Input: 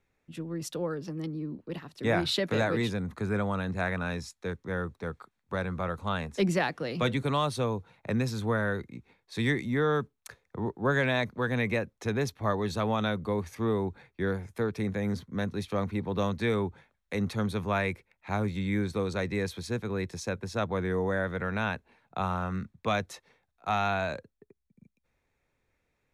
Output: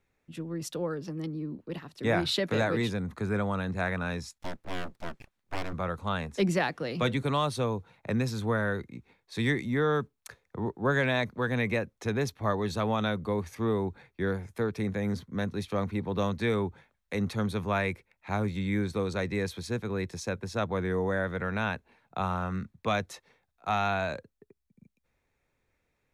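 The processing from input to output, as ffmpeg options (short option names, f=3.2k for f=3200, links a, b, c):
-filter_complex "[0:a]asplit=3[a][b][c];[a]afade=t=out:st=4.38:d=0.02[d];[b]aeval=exprs='abs(val(0))':c=same,afade=t=in:st=4.38:d=0.02,afade=t=out:st=5.72:d=0.02[e];[c]afade=t=in:st=5.72:d=0.02[f];[d][e][f]amix=inputs=3:normalize=0"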